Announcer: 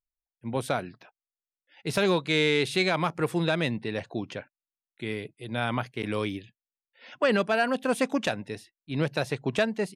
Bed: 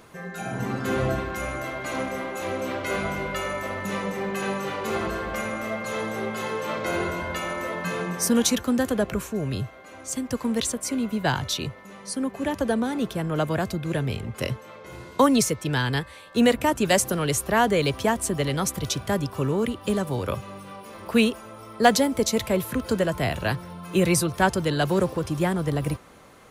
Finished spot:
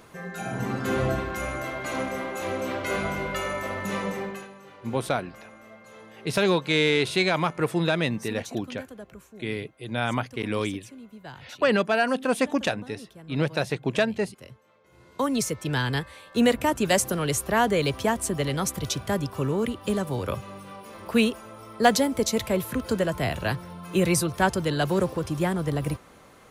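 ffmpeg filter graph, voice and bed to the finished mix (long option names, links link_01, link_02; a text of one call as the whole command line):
ffmpeg -i stem1.wav -i stem2.wav -filter_complex "[0:a]adelay=4400,volume=2dB[link_01];[1:a]volume=16.5dB,afade=type=out:start_time=4.12:duration=0.36:silence=0.125893,afade=type=in:start_time=14.91:duration=0.82:silence=0.141254[link_02];[link_01][link_02]amix=inputs=2:normalize=0" out.wav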